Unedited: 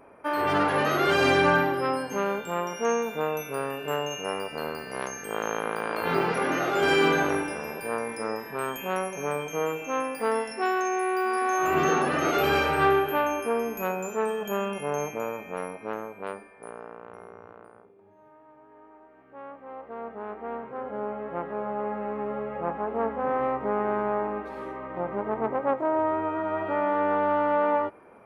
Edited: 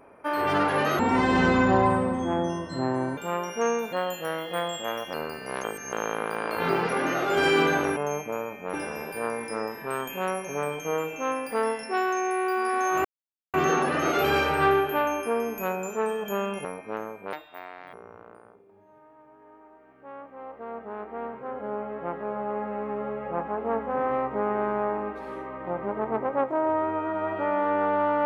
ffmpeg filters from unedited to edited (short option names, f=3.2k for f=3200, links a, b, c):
-filter_complex "[0:a]asplit=13[a][b][c][d][e][f][g][h][i][j][k][l][m];[a]atrim=end=0.994[n];[b]atrim=start=0.99:end=2.41,asetpts=PTS-STARTPTS,asetrate=28665,aresample=44100[o];[c]atrim=start=2.406:end=3.164[p];[d]atrim=start=3.16:end=4.59,asetpts=PTS-STARTPTS,asetrate=52038,aresample=44100,atrim=end_sample=53443,asetpts=PTS-STARTPTS[q];[e]atrim=start=4.586:end=5.092[r];[f]atrim=start=5.088:end=5.382,asetpts=PTS-STARTPTS,areverse[s];[g]atrim=start=5.378:end=7.422[t];[h]atrim=start=14.838:end=15.612[u];[i]atrim=start=7.418:end=11.73,asetpts=PTS-STARTPTS,afade=t=out:st=4.308:d=0.004:c=hsin,apad=pad_dur=0.49[v];[j]atrim=start=11.73:end=14.842,asetpts=PTS-STARTPTS,afade=t=in:d=0.004:c=hsin[w];[k]atrim=start=15.608:end=16.294[x];[l]atrim=start=16.29:end=17.23,asetpts=PTS-STARTPTS,asetrate=68355,aresample=44100[y];[m]atrim=start=17.226[z];[n][o]acrossfade=d=0.004:c1=hsin:c2=hsin[aa];[aa][p]acrossfade=d=0.004:c1=hsin:c2=hsin[ab];[ab][q]acrossfade=d=0.004:c1=hsin:c2=hsin[ac];[ac][r]acrossfade=d=0.004:c1=hsin:c2=hsin[ad];[ad][s]acrossfade=d=0.004:c1=hsin:c2=hsin[ae];[ae][t]acrossfade=d=0.004:c1=hsin:c2=hsin[af];[af][u]acrossfade=d=0.004:c1=hsin:c2=hsin[ag];[v][w]concat=n=2:v=0:a=1[ah];[ag][ah]acrossfade=d=0.004:c1=hsin:c2=hsin[ai];[ai][x]acrossfade=d=0.004:c1=hsin:c2=hsin[aj];[aj][y]acrossfade=d=0.004:c1=hsin:c2=hsin[ak];[ak][z]acrossfade=d=0.004:c1=hsin:c2=hsin"